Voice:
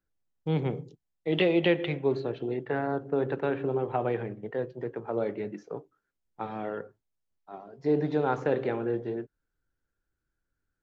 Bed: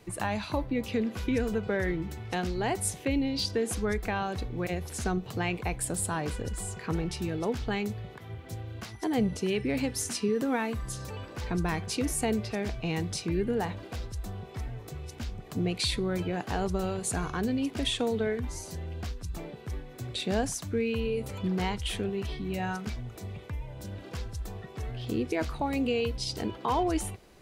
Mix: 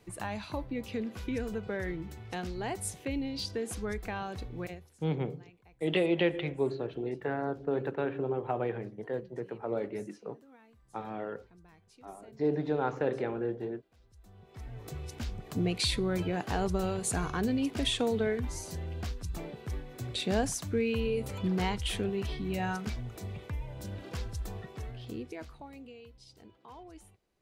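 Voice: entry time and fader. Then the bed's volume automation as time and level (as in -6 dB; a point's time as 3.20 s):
4.55 s, -3.5 dB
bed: 4.65 s -6 dB
5.00 s -29 dB
13.93 s -29 dB
14.88 s -0.5 dB
24.60 s -0.5 dB
25.98 s -22.5 dB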